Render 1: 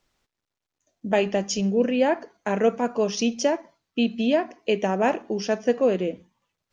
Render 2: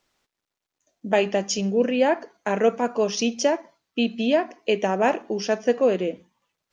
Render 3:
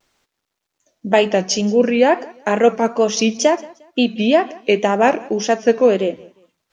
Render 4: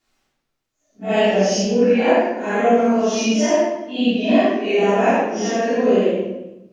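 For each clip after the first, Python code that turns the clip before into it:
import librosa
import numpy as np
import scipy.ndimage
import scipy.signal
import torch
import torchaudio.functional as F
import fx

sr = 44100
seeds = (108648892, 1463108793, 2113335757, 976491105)

y1 = fx.low_shelf(x, sr, hz=140.0, db=-10.5)
y1 = y1 * 10.0 ** (2.0 / 20.0)
y2 = fx.wow_flutter(y1, sr, seeds[0], rate_hz=2.1, depth_cents=100.0)
y2 = fx.echo_feedback(y2, sr, ms=177, feedback_pct=30, wet_db=-23.0)
y2 = y2 * 10.0 ** (6.5 / 20.0)
y3 = fx.phase_scramble(y2, sr, seeds[1], window_ms=200)
y3 = fx.room_shoebox(y3, sr, seeds[2], volume_m3=340.0, walls='mixed', distance_m=3.3)
y3 = y3 * 10.0 ** (-10.5 / 20.0)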